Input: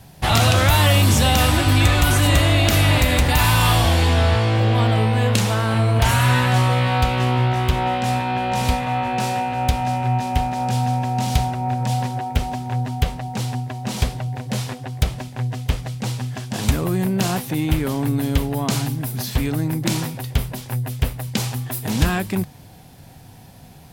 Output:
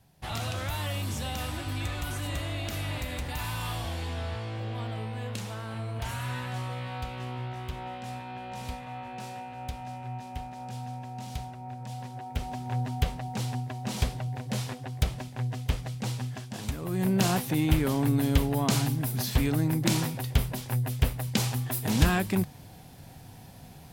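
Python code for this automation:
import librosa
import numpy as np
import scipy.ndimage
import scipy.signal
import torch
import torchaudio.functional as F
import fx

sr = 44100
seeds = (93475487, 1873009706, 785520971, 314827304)

y = fx.gain(x, sr, db=fx.line((11.94, -17.5), (12.73, -7.0), (16.26, -7.0), (16.76, -15.5), (17.09, -4.0)))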